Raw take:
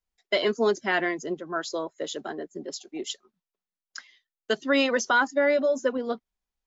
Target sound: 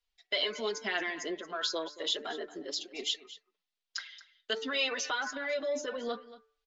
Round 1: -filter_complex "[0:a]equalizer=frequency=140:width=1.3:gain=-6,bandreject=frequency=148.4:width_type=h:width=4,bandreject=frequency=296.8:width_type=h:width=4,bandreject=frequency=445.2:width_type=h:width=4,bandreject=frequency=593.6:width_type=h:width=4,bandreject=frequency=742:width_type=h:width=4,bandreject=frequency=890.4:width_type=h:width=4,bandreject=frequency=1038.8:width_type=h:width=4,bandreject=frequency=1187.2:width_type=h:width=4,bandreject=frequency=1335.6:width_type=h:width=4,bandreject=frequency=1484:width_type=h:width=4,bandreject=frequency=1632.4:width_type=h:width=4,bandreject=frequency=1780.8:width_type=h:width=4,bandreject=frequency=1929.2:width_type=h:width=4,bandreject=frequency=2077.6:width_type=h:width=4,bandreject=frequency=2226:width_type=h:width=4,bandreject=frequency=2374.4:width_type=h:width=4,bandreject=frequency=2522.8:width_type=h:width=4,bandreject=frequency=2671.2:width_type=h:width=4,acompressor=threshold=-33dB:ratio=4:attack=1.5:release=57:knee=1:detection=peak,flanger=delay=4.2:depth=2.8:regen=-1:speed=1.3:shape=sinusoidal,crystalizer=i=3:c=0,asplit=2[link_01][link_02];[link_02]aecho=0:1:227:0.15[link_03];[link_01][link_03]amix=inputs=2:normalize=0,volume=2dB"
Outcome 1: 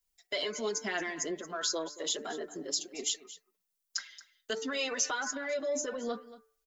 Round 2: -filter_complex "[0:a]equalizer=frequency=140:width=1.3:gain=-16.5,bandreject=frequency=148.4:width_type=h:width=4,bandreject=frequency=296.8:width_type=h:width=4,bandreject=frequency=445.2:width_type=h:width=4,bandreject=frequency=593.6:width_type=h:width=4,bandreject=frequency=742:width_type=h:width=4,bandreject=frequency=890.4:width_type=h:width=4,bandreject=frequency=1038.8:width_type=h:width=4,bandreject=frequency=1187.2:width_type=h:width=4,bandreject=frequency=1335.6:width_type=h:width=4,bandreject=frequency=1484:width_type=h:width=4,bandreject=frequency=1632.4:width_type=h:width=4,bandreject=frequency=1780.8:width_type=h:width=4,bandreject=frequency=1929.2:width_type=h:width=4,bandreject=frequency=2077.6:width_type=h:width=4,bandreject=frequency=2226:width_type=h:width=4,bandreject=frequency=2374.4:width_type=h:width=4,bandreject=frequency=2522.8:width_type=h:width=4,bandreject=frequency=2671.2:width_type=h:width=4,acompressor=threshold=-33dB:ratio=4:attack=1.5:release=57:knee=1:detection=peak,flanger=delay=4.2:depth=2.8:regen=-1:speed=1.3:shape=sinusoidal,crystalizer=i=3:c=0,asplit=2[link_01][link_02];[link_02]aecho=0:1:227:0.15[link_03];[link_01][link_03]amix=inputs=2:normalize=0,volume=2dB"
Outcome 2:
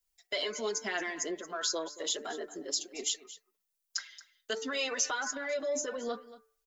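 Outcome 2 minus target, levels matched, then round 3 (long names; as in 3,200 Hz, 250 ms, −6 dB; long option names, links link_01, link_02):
4,000 Hz band −3.0 dB
-filter_complex "[0:a]equalizer=frequency=140:width=1.3:gain=-16.5,bandreject=frequency=148.4:width_type=h:width=4,bandreject=frequency=296.8:width_type=h:width=4,bandreject=frequency=445.2:width_type=h:width=4,bandreject=frequency=593.6:width_type=h:width=4,bandreject=frequency=742:width_type=h:width=4,bandreject=frequency=890.4:width_type=h:width=4,bandreject=frequency=1038.8:width_type=h:width=4,bandreject=frequency=1187.2:width_type=h:width=4,bandreject=frequency=1335.6:width_type=h:width=4,bandreject=frequency=1484:width_type=h:width=4,bandreject=frequency=1632.4:width_type=h:width=4,bandreject=frequency=1780.8:width_type=h:width=4,bandreject=frequency=1929.2:width_type=h:width=4,bandreject=frequency=2077.6:width_type=h:width=4,bandreject=frequency=2226:width_type=h:width=4,bandreject=frequency=2374.4:width_type=h:width=4,bandreject=frequency=2522.8:width_type=h:width=4,bandreject=frequency=2671.2:width_type=h:width=4,acompressor=threshold=-33dB:ratio=4:attack=1.5:release=57:knee=1:detection=peak,lowpass=frequency=3600:width_type=q:width=1.7,flanger=delay=4.2:depth=2.8:regen=-1:speed=1.3:shape=sinusoidal,crystalizer=i=3:c=0,asplit=2[link_01][link_02];[link_02]aecho=0:1:227:0.15[link_03];[link_01][link_03]amix=inputs=2:normalize=0,volume=2dB"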